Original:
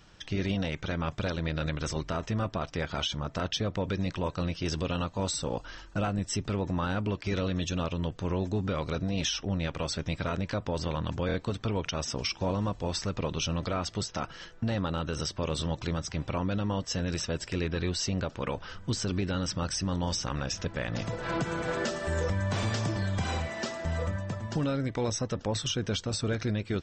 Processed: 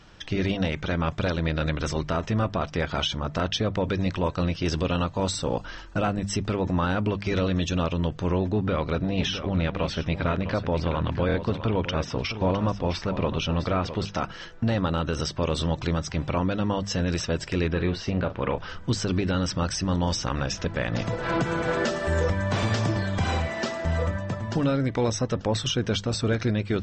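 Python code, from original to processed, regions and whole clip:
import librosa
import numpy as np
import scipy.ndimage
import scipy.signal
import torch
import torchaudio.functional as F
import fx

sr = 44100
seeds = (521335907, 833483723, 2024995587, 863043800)

y = fx.chain(x, sr, fx.lowpass(hz=3900.0, slope=12),
    fx.echo_single(ms=659, db=-10.5), at=(8.38, 14.09))
y = fx.chain(y, sr, fx.lowpass(hz=3000.0, slope=12),
    fx.doubler(ms=40.0, db=-11.0), at=(17.73, 18.58))
y = fx.high_shelf(y, sr, hz=7400.0, db=-11.0)
y = fx.hum_notches(y, sr, base_hz=50, count=4)
y = y * 10.0 ** (6.0 / 20.0)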